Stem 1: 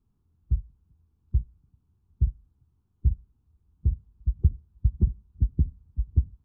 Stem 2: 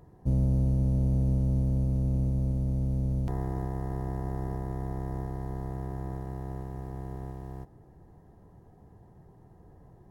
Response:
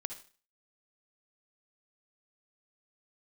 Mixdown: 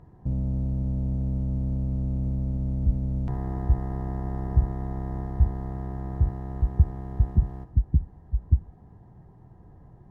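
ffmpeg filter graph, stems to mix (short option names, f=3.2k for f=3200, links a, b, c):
-filter_complex "[0:a]adelay=2350,volume=2dB[a];[1:a]alimiter=limit=-23.5dB:level=0:latency=1:release=93,volume=0dB,asplit=2[b][c];[c]volume=-1.5dB[d];[2:a]atrim=start_sample=2205[e];[d][e]afir=irnorm=-1:irlink=0[f];[a][b][f]amix=inputs=3:normalize=0,lowpass=f=1.7k:p=1,equalizer=f=460:t=o:w=1.2:g=-6"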